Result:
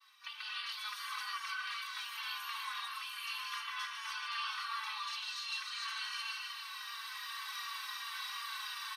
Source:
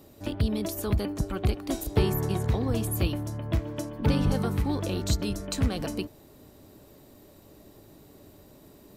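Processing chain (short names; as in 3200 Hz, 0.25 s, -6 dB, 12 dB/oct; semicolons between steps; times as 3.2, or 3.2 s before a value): recorder AGC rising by 21 dB/s; steep high-pass 980 Hz 96 dB/oct; feedback echo 0.155 s, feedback 51%, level -8.5 dB; reverse; compressor 6:1, threshold -45 dBFS, peak gain reduction 18.5 dB; reverse; expander -59 dBFS; polynomial smoothing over 15 samples; comb 2.6 ms, depth 63%; non-linear reverb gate 0.32 s rising, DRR -5 dB; endless flanger 4 ms -2.7 Hz; gain +5 dB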